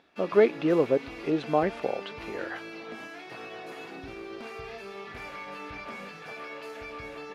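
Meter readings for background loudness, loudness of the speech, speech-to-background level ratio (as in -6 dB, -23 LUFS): -40.5 LUFS, -26.0 LUFS, 14.5 dB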